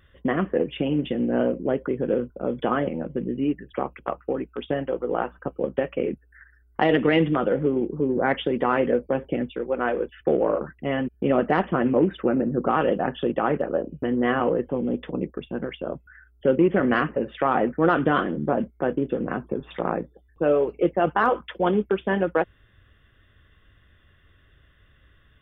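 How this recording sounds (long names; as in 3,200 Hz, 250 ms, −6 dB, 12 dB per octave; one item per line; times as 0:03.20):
background noise floor −59 dBFS
spectral slope −3.5 dB per octave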